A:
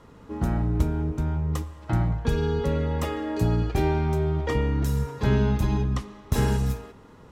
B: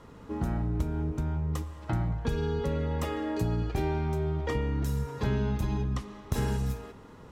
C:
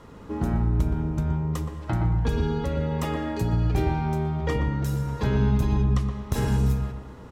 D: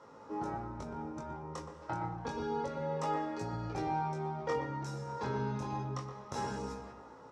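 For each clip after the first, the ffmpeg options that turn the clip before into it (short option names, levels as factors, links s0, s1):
-af "acompressor=threshold=0.0316:ratio=2"
-filter_complex "[0:a]asplit=2[s0][s1];[s1]adelay=121,lowpass=f=820:p=1,volume=0.708,asplit=2[s2][s3];[s3]adelay=121,lowpass=f=820:p=1,volume=0.39,asplit=2[s4][s5];[s5]adelay=121,lowpass=f=820:p=1,volume=0.39,asplit=2[s6][s7];[s7]adelay=121,lowpass=f=820:p=1,volume=0.39,asplit=2[s8][s9];[s9]adelay=121,lowpass=f=820:p=1,volume=0.39[s10];[s0][s2][s4][s6][s8][s10]amix=inputs=6:normalize=0,volume=1.5"
-af "flanger=delay=18.5:depth=5.1:speed=0.28,highpass=170,equalizer=f=190:t=q:w=4:g=-6,equalizer=f=530:t=q:w=4:g=7,equalizer=f=870:t=q:w=4:g=10,equalizer=f=1300:t=q:w=4:g=6,equalizer=f=3100:t=q:w=4:g=-4,equalizer=f=5500:t=q:w=4:g=8,lowpass=f=8600:w=0.5412,lowpass=f=8600:w=1.3066,volume=0.422"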